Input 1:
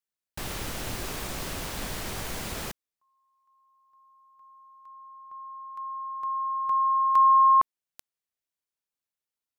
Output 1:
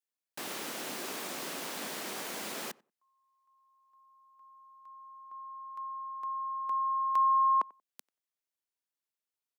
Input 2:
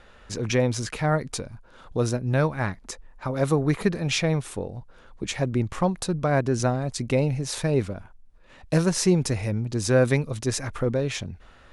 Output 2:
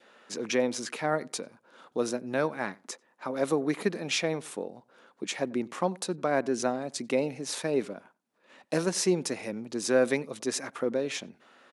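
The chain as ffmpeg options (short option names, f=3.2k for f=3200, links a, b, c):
-filter_complex "[0:a]highpass=f=220:w=0.5412,highpass=f=220:w=1.3066,adynamicequalizer=threshold=0.01:dfrequency=1200:dqfactor=2:tfrequency=1200:tqfactor=2:attack=5:release=100:ratio=0.375:range=2.5:mode=cutabove:tftype=bell,asplit=2[a][b];[b]adelay=92,lowpass=f=1.5k:p=1,volume=-22.5dB,asplit=2[c][d];[d]adelay=92,lowpass=f=1.5k:p=1,volume=0.18[e];[c][e]amix=inputs=2:normalize=0[f];[a][f]amix=inputs=2:normalize=0,volume=-3dB"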